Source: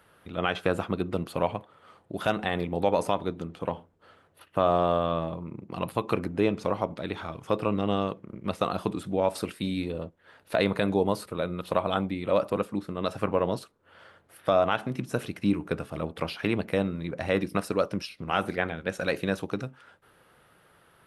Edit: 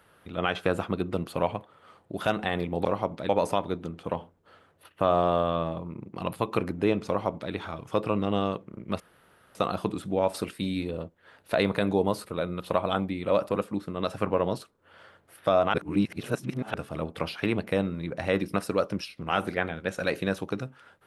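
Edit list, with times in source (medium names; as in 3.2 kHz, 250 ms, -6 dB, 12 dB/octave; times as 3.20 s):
6.64–7.08 s: copy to 2.85 s
8.56 s: insert room tone 0.55 s
14.75–15.75 s: reverse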